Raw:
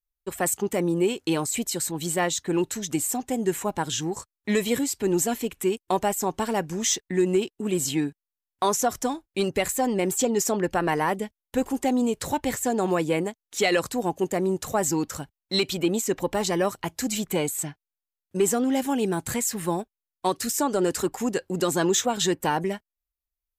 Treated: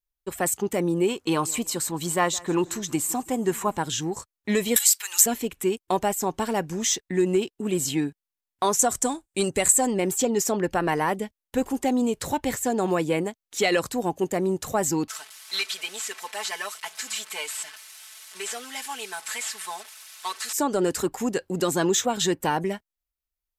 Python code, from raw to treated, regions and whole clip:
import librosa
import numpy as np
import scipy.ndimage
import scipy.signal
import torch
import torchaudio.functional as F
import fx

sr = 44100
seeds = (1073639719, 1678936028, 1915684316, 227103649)

y = fx.chain(x, sr, fx.peak_eq(hz=1100.0, db=9.0, octaves=0.53),
    fx.echo_feedback(ms=163, feedback_pct=42, wet_db=-22.0), at=(1.09, 3.77))
y = fx.chain(y, sr, fx.highpass(hz=1100.0, slope=24),
    fx.tilt_eq(slope=3.5),
    fx.band_squash(depth_pct=100), at=(4.76, 5.26))
y = fx.chain(y, sr, fx.peak_eq(hz=8200.0, db=14.5, octaves=0.56),
    fx.notch(hz=5300.0, q=16.0), at=(8.79, 9.91))
y = fx.chain(y, sr, fx.delta_mod(bps=64000, step_db=-35.5),
    fx.highpass(hz=1300.0, slope=12),
    fx.comb(ms=4.6, depth=0.9), at=(15.08, 20.53))